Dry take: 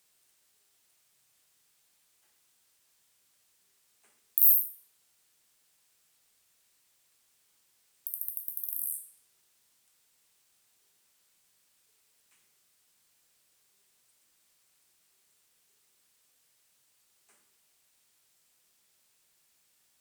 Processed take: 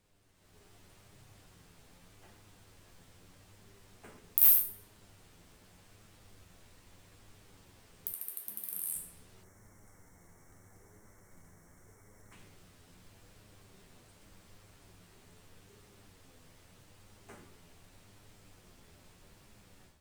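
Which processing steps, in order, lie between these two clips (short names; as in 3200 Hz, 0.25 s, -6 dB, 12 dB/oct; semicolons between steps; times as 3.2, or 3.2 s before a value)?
8.13–8.96 weighting filter A; 9.43–12.32 spectral delete 2300–5300 Hz; tilt -4.5 dB/oct; AGC gain up to 13 dB; short-mantissa float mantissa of 2-bit; flange 0.82 Hz, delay 9.4 ms, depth 2.6 ms, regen +41%; gain +7.5 dB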